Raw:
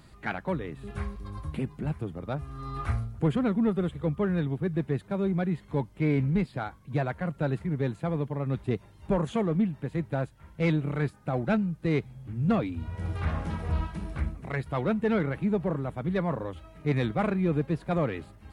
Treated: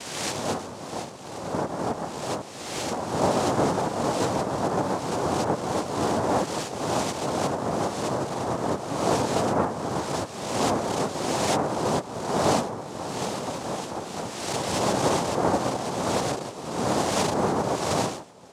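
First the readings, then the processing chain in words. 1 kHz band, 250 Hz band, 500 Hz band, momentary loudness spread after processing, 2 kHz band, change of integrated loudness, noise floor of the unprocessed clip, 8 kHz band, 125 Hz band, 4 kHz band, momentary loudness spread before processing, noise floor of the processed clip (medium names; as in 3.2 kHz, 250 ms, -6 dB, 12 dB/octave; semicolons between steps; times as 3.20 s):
+11.5 dB, -0.5 dB, +5.5 dB, 8 LU, +3.5 dB, +3.0 dB, -54 dBFS, no reading, -4.5 dB, +15.5 dB, 9 LU, -38 dBFS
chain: reverse spectral sustain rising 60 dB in 1.36 s; noise-vocoded speech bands 2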